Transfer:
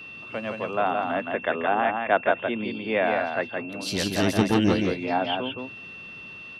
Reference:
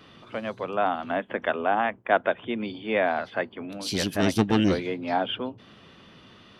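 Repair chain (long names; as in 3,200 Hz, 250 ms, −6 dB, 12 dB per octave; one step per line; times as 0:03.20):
notch filter 2,700 Hz, Q 30
echo removal 168 ms −4.5 dB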